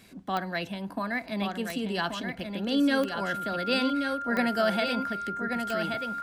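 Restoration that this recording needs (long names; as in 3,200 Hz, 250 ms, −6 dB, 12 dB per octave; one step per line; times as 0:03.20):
click removal
notch filter 1,400 Hz, Q 30
echo removal 1,130 ms −6 dB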